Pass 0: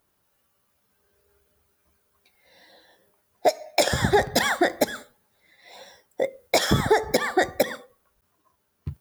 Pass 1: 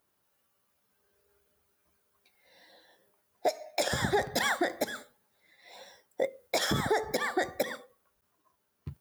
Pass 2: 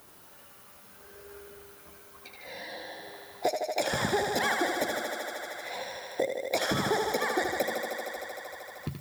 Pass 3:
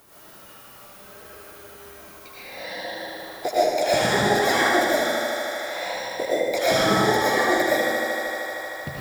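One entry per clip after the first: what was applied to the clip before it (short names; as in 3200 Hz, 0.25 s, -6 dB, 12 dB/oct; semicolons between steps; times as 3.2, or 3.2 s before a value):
low shelf 90 Hz -9.5 dB; limiter -13 dBFS, peak gain reduction 6 dB; gain -4.5 dB
thinning echo 77 ms, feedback 79%, high-pass 170 Hz, level -5.5 dB; three-band squash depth 70%
reverb RT60 0.95 s, pre-delay 75 ms, DRR -8.5 dB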